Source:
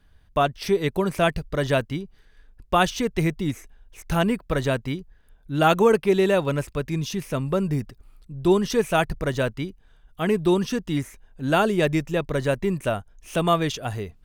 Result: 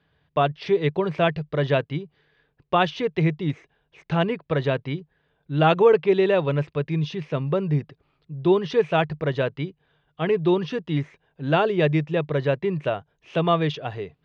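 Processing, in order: cabinet simulation 150–3900 Hz, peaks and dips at 150 Hz +9 dB, 220 Hz -10 dB, 450 Hz +3 dB, 1.4 kHz -3 dB

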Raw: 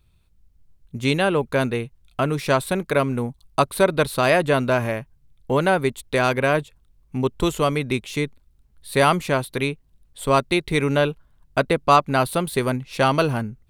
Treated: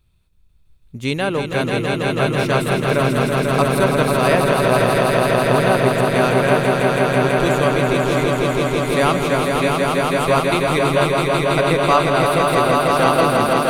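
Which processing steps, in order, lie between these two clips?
echo with a slow build-up 164 ms, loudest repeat 5, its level -4 dB; trim -1 dB

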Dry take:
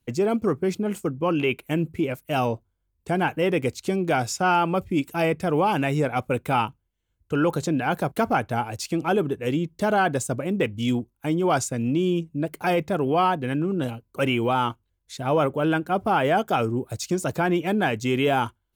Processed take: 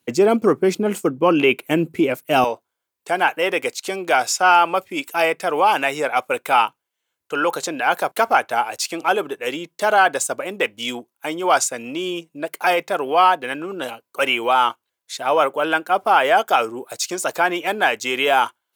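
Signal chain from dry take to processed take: high-pass 260 Hz 12 dB/octave, from 2.44 s 650 Hz; trim +8.5 dB

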